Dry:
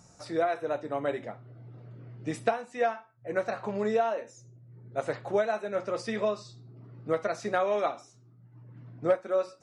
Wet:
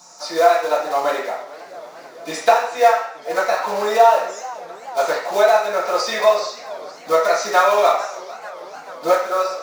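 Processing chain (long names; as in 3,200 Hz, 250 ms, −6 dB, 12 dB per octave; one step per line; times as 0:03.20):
one scale factor per block 5 bits
high-pass filter 1,100 Hz 12 dB per octave
convolution reverb RT60 0.55 s, pre-delay 3 ms, DRR −11 dB
feedback echo with a swinging delay time 442 ms, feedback 78%, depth 195 cents, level −19.5 dB
level +5.5 dB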